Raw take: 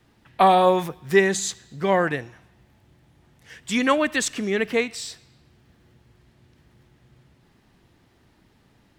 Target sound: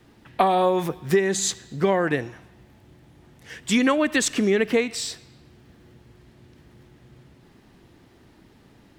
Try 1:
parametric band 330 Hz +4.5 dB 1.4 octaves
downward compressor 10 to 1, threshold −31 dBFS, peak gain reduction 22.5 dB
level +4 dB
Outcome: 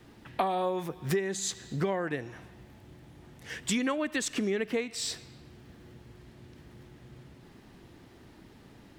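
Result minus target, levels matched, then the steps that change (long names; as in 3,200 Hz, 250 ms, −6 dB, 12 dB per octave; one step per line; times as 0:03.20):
downward compressor: peak gain reduction +10 dB
change: downward compressor 10 to 1, threshold −20 dBFS, peak gain reduction 12.5 dB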